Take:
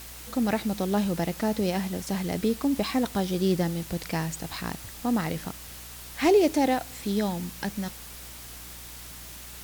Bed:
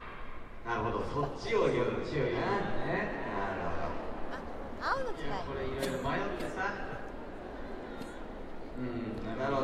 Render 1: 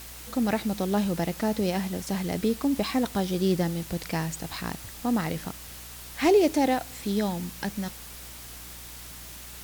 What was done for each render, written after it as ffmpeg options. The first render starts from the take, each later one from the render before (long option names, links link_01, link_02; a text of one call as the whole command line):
ffmpeg -i in.wav -af anull out.wav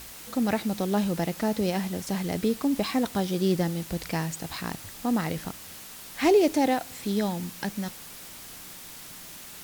ffmpeg -i in.wav -af "bandreject=frequency=60:width_type=h:width=4,bandreject=frequency=120:width_type=h:width=4" out.wav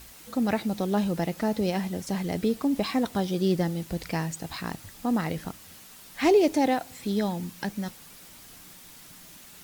ffmpeg -i in.wav -af "afftdn=noise_reduction=6:noise_floor=-44" out.wav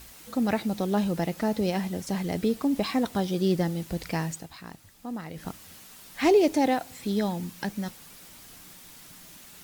ffmpeg -i in.wav -filter_complex "[0:a]asplit=3[link_01][link_02][link_03];[link_01]atrim=end=4.48,asetpts=PTS-STARTPTS,afade=type=out:start_time=4.33:duration=0.15:silence=0.334965[link_04];[link_02]atrim=start=4.48:end=5.33,asetpts=PTS-STARTPTS,volume=-9.5dB[link_05];[link_03]atrim=start=5.33,asetpts=PTS-STARTPTS,afade=type=in:duration=0.15:silence=0.334965[link_06];[link_04][link_05][link_06]concat=n=3:v=0:a=1" out.wav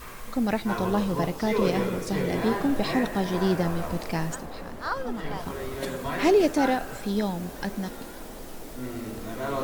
ffmpeg -i in.wav -i bed.wav -filter_complex "[1:a]volume=2dB[link_01];[0:a][link_01]amix=inputs=2:normalize=0" out.wav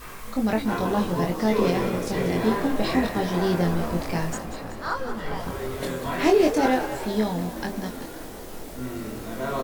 ffmpeg -i in.wav -filter_complex "[0:a]asplit=2[link_01][link_02];[link_02]adelay=23,volume=-3.5dB[link_03];[link_01][link_03]amix=inputs=2:normalize=0,asplit=8[link_04][link_05][link_06][link_07][link_08][link_09][link_10][link_11];[link_05]adelay=189,afreqshift=55,volume=-12dB[link_12];[link_06]adelay=378,afreqshift=110,volume=-16.6dB[link_13];[link_07]adelay=567,afreqshift=165,volume=-21.2dB[link_14];[link_08]adelay=756,afreqshift=220,volume=-25.7dB[link_15];[link_09]adelay=945,afreqshift=275,volume=-30.3dB[link_16];[link_10]adelay=1134,afreqshift=330,volume=-34.9dB[link_17];[link_11]adelay=1323,afreqshift=385,volume=-39.5dB[link_18];[link_04][link_12][link_13][link_14][link_15][link_16][link_17][link_18]amix=inputs=8:normalize=0" out.wav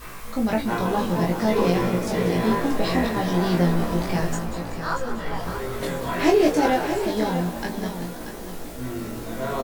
ffmpeg -i in.wav -filter_complex "[0:a]asplit=2[link_01][link_02];[link_02]adelay=17,volume=-5dB[link_03];[link_01][link_03]amix=inputs=2:normalize=0,aecho=1:1:634:0.335" out.wav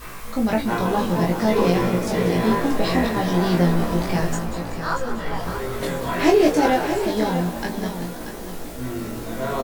ffmpeg -i in.wav -af "volume=2dB" out.wav